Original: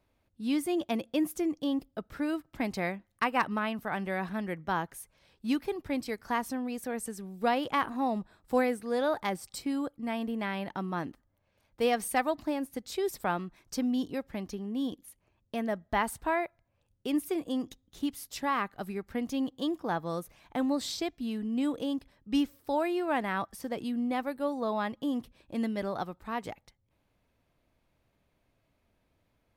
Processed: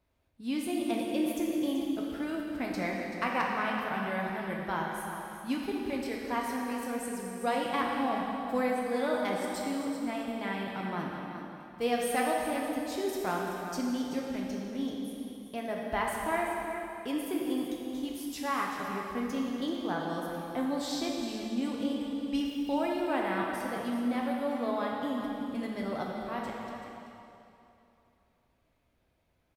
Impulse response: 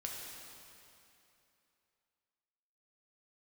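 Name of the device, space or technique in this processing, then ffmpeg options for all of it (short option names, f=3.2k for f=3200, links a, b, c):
cave: -filter_complex "[0:a]aecho=1:1:383:0.282[a];[1:a]atrim=start_sample=2205[b];[a][b]afir=irnorm=-1:irlink=0"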